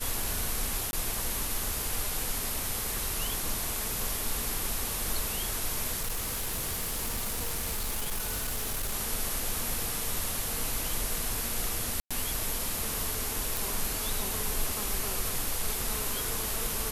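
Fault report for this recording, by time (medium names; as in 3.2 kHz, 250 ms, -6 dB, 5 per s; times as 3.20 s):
0.91–0.93 s: dropout 21 ms
6.00–8.94 s: clipped -28 dBFS
12.00–12.11 s: dropout 106 ms
13.57 s: pop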